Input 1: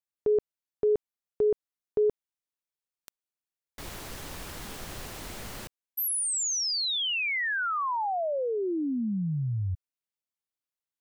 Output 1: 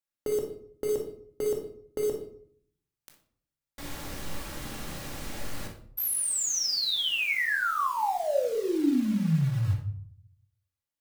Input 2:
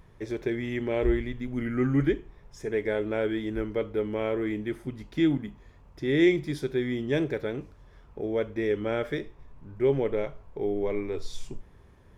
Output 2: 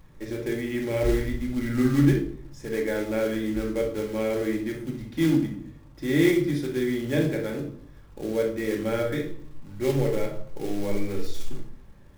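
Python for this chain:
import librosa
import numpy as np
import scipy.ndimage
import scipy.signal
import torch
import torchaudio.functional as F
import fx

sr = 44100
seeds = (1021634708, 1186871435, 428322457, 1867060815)

y = fx.room_flutter(x, sr, wall_m=10.2, rt60_s=0.28)
y = fx.quant_float(y, sr, bits=2)
y = fx.room_shoebox(y, sr, seeds[0], volume_m3=740.0, walls='furnished', distance_m=2.3)
y = F.gain(torch.from_numpy(y), -2.0).numpy()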